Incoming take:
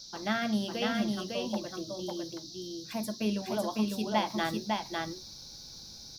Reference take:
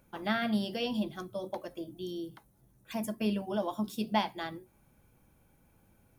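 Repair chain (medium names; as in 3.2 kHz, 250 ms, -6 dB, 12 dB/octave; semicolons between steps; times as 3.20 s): noise print and reduce 18 dB; inverse comb 553 ms -3 dB; trim 0 dB, from 4.30 s -6.5 dB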